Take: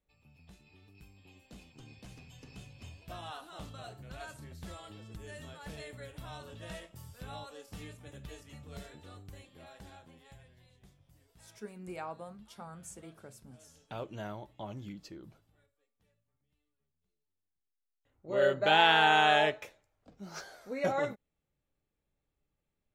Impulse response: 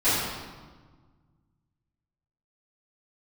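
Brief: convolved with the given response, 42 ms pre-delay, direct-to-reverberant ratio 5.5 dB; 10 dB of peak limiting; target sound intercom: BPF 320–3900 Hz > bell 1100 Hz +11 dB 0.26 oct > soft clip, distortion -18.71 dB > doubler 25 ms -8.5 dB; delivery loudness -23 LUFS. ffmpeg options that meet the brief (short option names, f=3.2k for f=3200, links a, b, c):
-filter_complex "[0:a]alimiter=limit=-20.5dB:level=0:latency=1,asplit=2[a][b];[1:a]atrim=start_sample=2205,adelay=42[c];[b][c]afir=irnorm=-1:irlink=0,volume=-21.5dB[d];[a][d]amix=inputs=2:normalize=0,highpass=320,lowpass=3.9k,equalizer=f=1.1k:t=o:w=0.26:g=11,asoftclip=threshold=-21.5dB,asplit=2[e][f];[f]adelay=25,volume=-8.5dB[g];[e][g]amix=inputs=2:normalize=0,volume=14.5dB"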